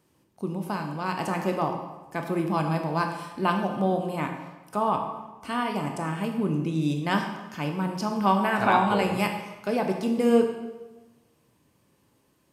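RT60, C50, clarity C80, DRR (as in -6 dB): 1.1 s, 6.0 dB, 8.0 dB, 3.5 dB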